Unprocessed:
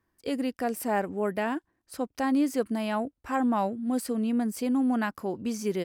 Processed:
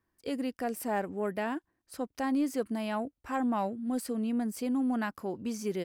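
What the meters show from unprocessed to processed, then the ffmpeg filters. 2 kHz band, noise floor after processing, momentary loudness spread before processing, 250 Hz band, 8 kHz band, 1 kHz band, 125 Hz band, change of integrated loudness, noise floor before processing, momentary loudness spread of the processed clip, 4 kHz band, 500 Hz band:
−4.0 dB, −83 dBFS, 7 LU, −4.0 dB, −3.5 dB, −4.0 dB, can't be measured, −4.0 dB, −79 dBFS, 7 LU, −4.0 dB, −4.0 dB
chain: -af "aeval=exprs='0.188*(cos(1*acos(clip(val(0)/0.188,-1,1)))-cos(1*PI/2))+0.00422*(cos(5*acos(clip(val(0)/0.188,-1,1)))-cos(5*PI/2))':channel_layout=same,volume=-4.5dB"

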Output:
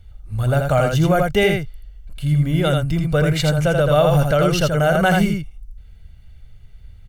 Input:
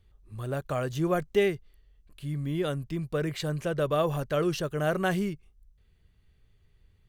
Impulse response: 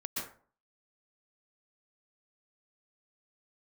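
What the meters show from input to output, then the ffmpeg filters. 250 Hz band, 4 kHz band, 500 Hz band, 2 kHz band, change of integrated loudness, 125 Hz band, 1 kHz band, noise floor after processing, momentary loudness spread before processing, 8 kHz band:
+11.0 dB, +13.0 dB, +10.5 dB, +13.0 dB, +11.5 dB, +15.0 dB, +12.5 dB, −44 dBFS, 10 LU, +12.5 dB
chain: -af "lowshelf=frequency=82:gain=7,aecho=1:1:1.4:0.56,aecho=1:1:82:0.596,alimiter=level_in=16dB:limit=-1dB:release=50:level=0:latency=1,volume=-5.5dB"

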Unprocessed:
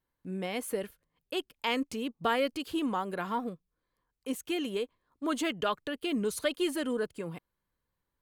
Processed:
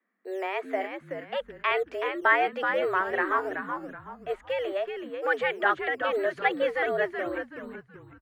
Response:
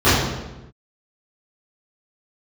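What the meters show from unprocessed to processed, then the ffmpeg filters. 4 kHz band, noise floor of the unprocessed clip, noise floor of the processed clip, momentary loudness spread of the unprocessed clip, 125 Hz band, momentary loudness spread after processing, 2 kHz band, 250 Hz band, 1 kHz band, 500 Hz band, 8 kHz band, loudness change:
−3.0 dB, −85 dBFS, −57 dBFS, 11 LU, −6.0 dB, 12 LU, +12.0 dB, −5.0 dB, +8.0 dB, +6.0 dB, below −15 dB, +5.0 dB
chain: -filter_complex "[0:a]lowpass=frequency=1700:width_type=q:width=3.3,acrossover=split=170[link_01][link_02];[link_01]acrusher=samples=15:mix=1:aa=0.000001:lfo=1:lforange=9:lforate=2.7[link_03];[link_03][link_02]amix=inputs=2:normalize=0,afreqshift=190,asplit=5[link_04][link_05][link_06][link_07][link_08];[link_05]adelay=376,afreqshift=-110,volume=-6.5dB[link_09];[link_06]adelay=752,afreqshift=-220,volume=-16.1dB[link_10];[link_07]adelay=1128,afreqshift=-330,volume=-25.8dB[link_11];[link_08]adelay=1504,afreqshift=-440,volume=-35.4dB[link_12];[link_04][link_09][link_10][link_11][link_12]amix=inputs=5:normalize=0,volume=2.5dB"

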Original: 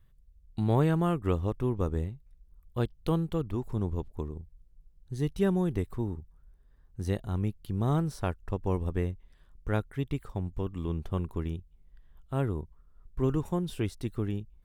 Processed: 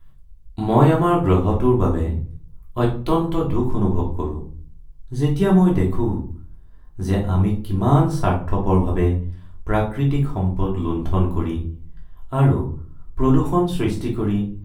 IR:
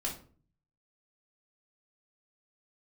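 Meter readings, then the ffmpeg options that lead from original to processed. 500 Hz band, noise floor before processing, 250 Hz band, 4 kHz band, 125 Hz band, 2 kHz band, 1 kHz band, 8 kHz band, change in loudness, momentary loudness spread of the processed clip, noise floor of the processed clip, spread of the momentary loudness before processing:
+11.0 dB, −61 dBFS, +12.0 dB, +10.0 dB, +11.0 dB, +9.5 dB, +14.5 dB, can't be measured, +11.5 dB, 16 LU, −42 dBFS, 12 LU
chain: -filter_complex "[0:a]equalizer=frequency=940:width=1.7:gain=6.5[link_01];[1:a]atrim=start_sample=2205[link_02];[link_01][link_02]afir=irnorm=-1:irlink=0,volume=7dB"

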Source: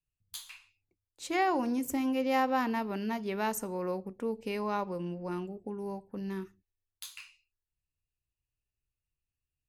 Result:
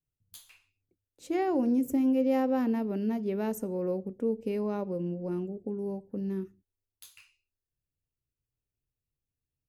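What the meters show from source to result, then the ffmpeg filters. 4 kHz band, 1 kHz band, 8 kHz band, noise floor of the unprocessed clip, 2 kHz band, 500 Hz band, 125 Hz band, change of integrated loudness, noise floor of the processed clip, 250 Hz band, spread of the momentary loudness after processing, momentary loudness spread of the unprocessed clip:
can't be measured, −6.0 dB, −7.0 dB, below −85 dBFS, −8.5 dB, +3.5 dB, +4.0 dB, +2.5 dB, below −85 dBFS, +5.0 dB, 9 LU, 17 LU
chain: -af "equalizer=frequency=125:width_type=o:width=1:gain=6,equalizer=frequency=250:width_type=o:width=1:gain=6,equalizer=frequency=500:width_type=o:width=1:gain=7,equalizer=frequency=1000:width_type=o:width=1:gain=-8,equalizer=frequency=2000:width_type=o:width=1:gain=-4,equalizer=frequency=4000:width_type=o:width=1:gain=-6,equalizer=frequency=8000:width_type=o:width=1:gain=-4,volume=-2.5dB"

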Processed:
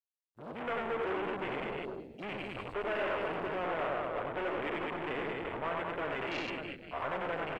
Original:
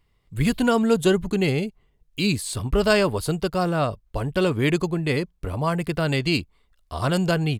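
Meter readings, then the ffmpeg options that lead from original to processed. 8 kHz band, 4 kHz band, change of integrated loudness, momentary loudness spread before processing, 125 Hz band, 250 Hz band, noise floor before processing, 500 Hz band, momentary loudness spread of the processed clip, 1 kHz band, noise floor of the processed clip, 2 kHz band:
below −30 dB, −16.0 dB, −13.0 dB, 8 LU, −24.0 dB, −18.5 dB, −66 dBFS, −12.0 dB, 7 LU, −7.0 dB, −60 dBFS, −9.0 dB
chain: -filter_complex "[0:a]asplit=2[link_01][link_02];[link_02]aecho=0:1:90|207|359.1|556.8|813.9:0.631|0.398|0.251|0.158|0.1[link_03];[link_01][link_03]amix=inputs=2:normalize=0,acrossover=split=3800[link_04][link_05];[link_05]acompressor=threshold=-39dB:ratio=4:attack=1:release=60[link_06];[link_04][link_06]amix=inputs=2:normalize=0,agate=range=-33dB:threshold=-29dB:ratio=3:detection=peak,aeval=exprs='(tanh(39.8*val(0)+0.5)-tanh(0.5))/39.8':channel_layout=same,dynaudnorm=framelen=200:gausssize=5:maxgain=7dB,acrossover=split=370 3700:gain=0.112 1 0.178[link_07][link_08][link_09];[link_07][link_08][link_09]amix=inputs=3:normalize=0,asplit=2[link_10][link_11];[link_11]asplit=6[link_12][link_13][link_14][link_15][link_16][link_17];[link_12]adelay=106,afreqshift=-74,volume=-10dB[link_18];[link_13]adelay=212,afreqshift=-148,volume=-15dB[link_19];[link_14]adelay=318,afreqshift=-222,volume=-20.1dB[link_20];[link_15]adelay=424,afreqshift=-296,volume=-25.1dB[link_21];[link_16]adelay=530,afreqshift=-370,volume=-30.1dB[link_22];[link_17]adelay=636,afreqshift=-444,volume=-35.2dB[link_23];[link_18][link_19][link_20][link_21][link_22][link_23]amix=inputs=6:normalize=0[link_24];[link_10][link_24]amix=inputs=2:normalize=0,aeval=exprs='val(0)*gte(abs(val(0)),0.00211)':channel_layout=same,afwtdn=0.0141,volume=-5dB"

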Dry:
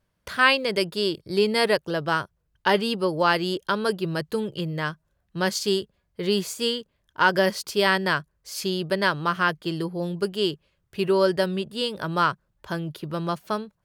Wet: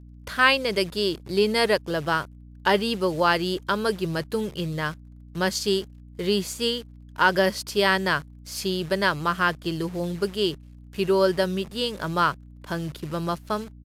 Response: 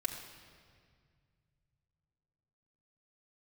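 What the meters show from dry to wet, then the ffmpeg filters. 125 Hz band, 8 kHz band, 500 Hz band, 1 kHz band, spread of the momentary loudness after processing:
+0.5 dB, +0.5 dB, 0.0 dB, 0.0 dB, 11 LU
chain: -af "acrusher=bits=8:dc=4:mix=0:aa=0.000001,aeval=exprs='val(0)+0.00631*(sin(2*PI*60*n/s)+sin(2*PI*2*60*n/s)/2+sin(2*PI*3*60*n/s)/3+sin(2*PI*4*60*n/s)/4+sin(2*PI*5*60*n/s)/5)':channel_layout=same,aresample=32000,aresample=44100"

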